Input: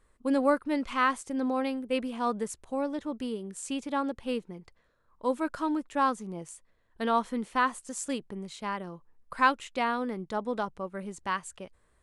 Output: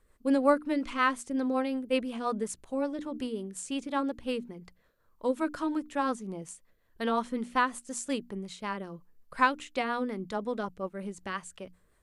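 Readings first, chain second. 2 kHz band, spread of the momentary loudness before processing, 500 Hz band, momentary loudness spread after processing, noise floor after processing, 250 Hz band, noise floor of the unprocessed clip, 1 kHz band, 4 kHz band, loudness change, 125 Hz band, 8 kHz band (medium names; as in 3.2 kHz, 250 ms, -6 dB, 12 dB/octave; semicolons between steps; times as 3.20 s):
-0.5 dB, 15 LU, 0.0 dB, 13 LU, -68 dBFS, 0.0 dB, -68 dBFS, -2.0 dB, 0.0 dB, -0.5 dB, 0.0 dB, -0.5 dB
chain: hum notches 60/120/180/240/300 Hz; rotary cabinet horn 5.5 Hz; trim +2 dB; MP2 192 kbps 48 kHz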